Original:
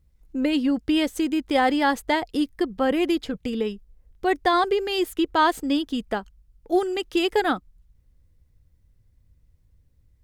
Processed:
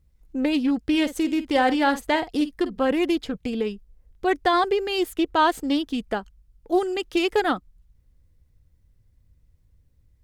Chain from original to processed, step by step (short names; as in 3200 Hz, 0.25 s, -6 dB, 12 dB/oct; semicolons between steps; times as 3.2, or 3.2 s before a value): 0.81–2.82 doubler 50 ms -12.5 dB; Doppler distortion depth 0.12 ms